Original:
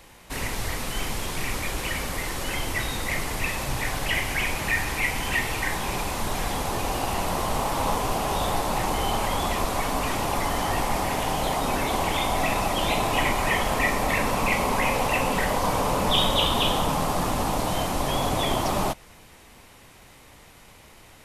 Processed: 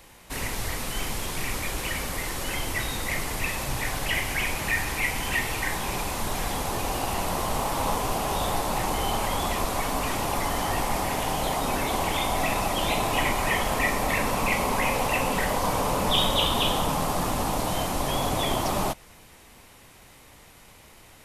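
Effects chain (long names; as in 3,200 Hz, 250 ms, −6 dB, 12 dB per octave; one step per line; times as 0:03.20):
high-shelf EQ 8,000 Hz +4 dB
level −1.5 dB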